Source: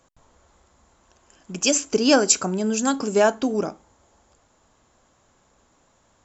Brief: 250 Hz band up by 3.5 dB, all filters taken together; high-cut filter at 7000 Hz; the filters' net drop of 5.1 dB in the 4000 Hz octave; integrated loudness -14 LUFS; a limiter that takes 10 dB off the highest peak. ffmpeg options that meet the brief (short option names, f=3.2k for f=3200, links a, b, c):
-af "lowpass=7k,equalizer=f=250:t=o:g=4,equalizer=f=4k:t=o:g=-6.5,volume=10dB,alimiter=limit=-4dB:level=0:latency=1"